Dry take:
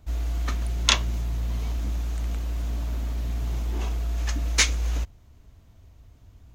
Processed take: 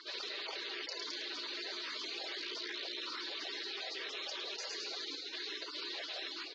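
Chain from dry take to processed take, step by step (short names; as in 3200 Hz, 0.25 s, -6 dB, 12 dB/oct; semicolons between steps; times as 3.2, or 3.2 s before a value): random spectral dropouts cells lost 21%; comb 5.6 ms, depth 64%; AGC gain up to 10.5 dB; 2.4–2.98 tube stage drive 15 dB, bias 0.45; frequency-shifting echo 0.107 s, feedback 43%, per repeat +43 Hz, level -19 dB; mistuned SSB +180 Hz 480–3200 Hz; spectral gate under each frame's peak -25 dB weak; fast leveller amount 100%; gain +1.5 dB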